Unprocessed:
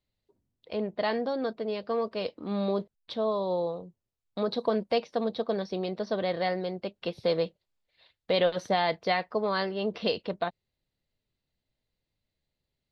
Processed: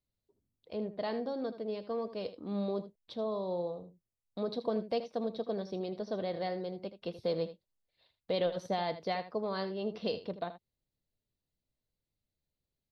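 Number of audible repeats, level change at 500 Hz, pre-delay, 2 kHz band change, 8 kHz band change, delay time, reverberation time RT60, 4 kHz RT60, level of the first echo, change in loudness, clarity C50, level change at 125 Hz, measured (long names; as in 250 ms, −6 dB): 1, −6.0 dB, no reverb audible, −11.5 dB, can't be measured, 79 ms, no reverb audible, no reverb audible, −13.0 dB, −6.5 dB, no reverb audible, −5.0 dB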